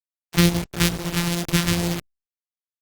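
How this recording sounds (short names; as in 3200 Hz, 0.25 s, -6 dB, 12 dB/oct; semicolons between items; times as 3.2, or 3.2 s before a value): a buzz of ramps at a fixed pitch in blocks of 256 samples; phasing stages 2, 2.3 Hz, lowest notch 580–1200 Hz; a quantiser's noise floor 6-bit, dither none; Opus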